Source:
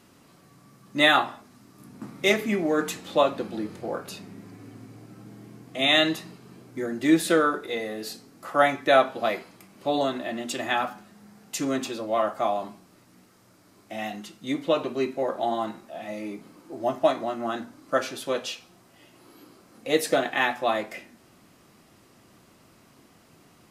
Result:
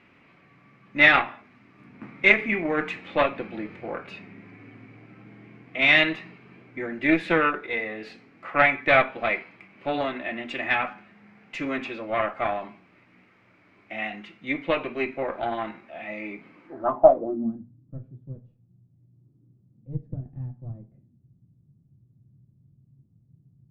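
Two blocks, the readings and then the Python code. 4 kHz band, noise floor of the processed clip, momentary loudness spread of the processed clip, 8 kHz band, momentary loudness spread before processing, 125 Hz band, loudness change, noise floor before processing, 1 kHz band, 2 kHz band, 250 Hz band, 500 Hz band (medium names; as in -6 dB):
-4.5 dB, -61 dBFS, 22 LU, under -20 dB, 20 LU, +3.5 dB, +2.0 dB, -57 dBFS, -1.0 dB, +5.5 dB, -2.5 dB, -1.0 dB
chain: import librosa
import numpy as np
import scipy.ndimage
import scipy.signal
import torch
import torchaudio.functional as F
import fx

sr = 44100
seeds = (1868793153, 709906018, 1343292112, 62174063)

y = fx.cheby_harmonics(x, sr, harmonics=(4,), levels_db=(-16,), full_scale_db=-6.0)
y = fx.filter_sweep_lowpass(y, sr, from_hz=2300.0, to_hz=130.0, start_s=16.65, end_s=17.67, q=4.7)
y = y * 10.0 ** (-3.0 / 20.0)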